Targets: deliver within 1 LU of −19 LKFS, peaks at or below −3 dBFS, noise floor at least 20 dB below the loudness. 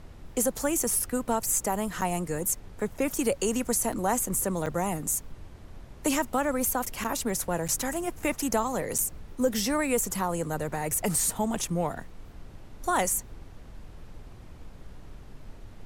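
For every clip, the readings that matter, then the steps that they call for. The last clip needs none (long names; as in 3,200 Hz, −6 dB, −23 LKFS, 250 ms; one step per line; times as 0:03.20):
number of dropouts 6; longest dropout 6.6 ms; background noise floor −47 dBFS; target noise floor −48 dBFS; integrated loudness −28.0 LKFS; sample peak −13.5 dBFS; target loudness −19.0 LKFS
→ repair the gap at 0:02.01/0:03.92/0:04.66/0:07.04/0:07.68/0:08.98, 6.6 ms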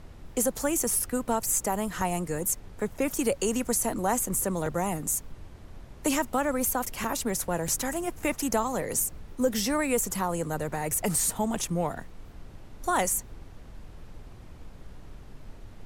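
number of dropouts 0; background noise floor −47 dBFS; target noise floor −48 dBFS
→ noise reduction from a noise print 6 dB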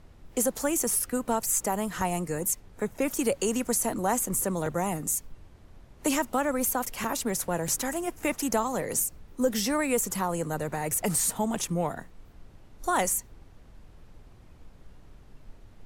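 background noise floor −53 dBFS; integrated loudness −28.0 LKFS; sample peak −12.5 dBFS; target loudness −19.0 LKFS
→ level +9 dB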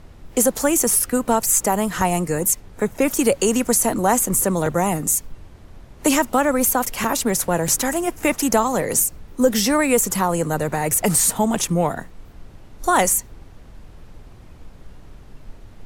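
integrated loudness −19.0 LKFS; sample peak −3.5 dBFS; background noise floor −44 dBFS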